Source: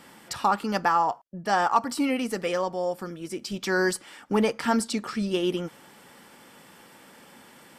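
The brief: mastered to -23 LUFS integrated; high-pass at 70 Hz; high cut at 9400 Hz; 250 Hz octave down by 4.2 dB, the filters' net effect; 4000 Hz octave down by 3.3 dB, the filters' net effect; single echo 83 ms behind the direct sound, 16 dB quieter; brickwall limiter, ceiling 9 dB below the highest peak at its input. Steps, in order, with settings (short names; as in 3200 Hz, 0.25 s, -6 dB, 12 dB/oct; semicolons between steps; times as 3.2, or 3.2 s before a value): HPF 70 Hz; LPF 9400 Hz; bell 250 Hz -5.5 dB; bell 4000 Hz -4.5 dB; limiter -18 dBFS; echo 83 ms -16 dB; gain +7.5 dB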